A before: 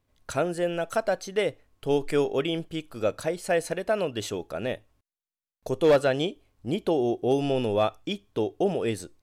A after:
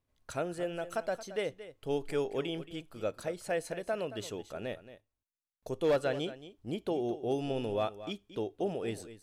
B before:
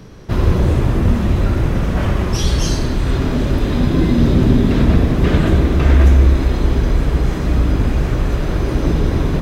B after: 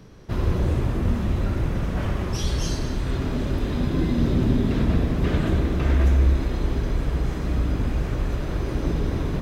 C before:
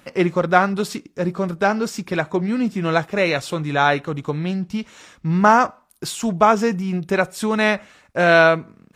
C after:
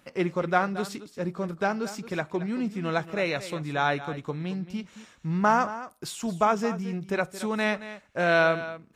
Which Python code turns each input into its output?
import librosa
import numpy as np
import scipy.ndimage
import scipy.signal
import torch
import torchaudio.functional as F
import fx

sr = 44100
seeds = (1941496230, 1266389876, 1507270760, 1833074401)

y = x + 10.0 ** (-14.0 / 20.0) * np.pad(x, (int(224 * sr / 1000.0), 0))[:len(x)]
y = y * librosa.db_to_amplitude(-8.5)